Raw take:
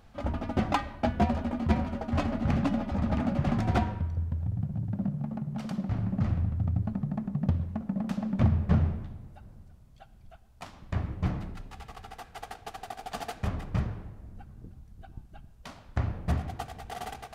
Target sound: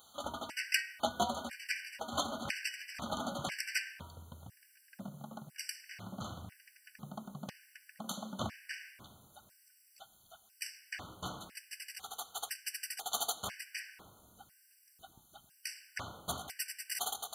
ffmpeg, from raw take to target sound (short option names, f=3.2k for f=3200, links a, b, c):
-af "aderivative,afftfilt=real='re*gt(sin(2*PI*1*pts/sr)*(1-2*mod(floor(b*sr/1024/1500),2)),0)':imag='im*gt(sin(2*PI*1*pts/sr)*(1-2*mod(floor(b*sr/1024/1500),2)),0)':win_size=1024:overlap=0.75,volume=16dB"